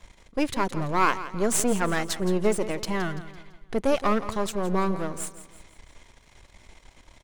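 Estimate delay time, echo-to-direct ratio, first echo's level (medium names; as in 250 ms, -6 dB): 168 ms, -13.0 dB, -14.0 dB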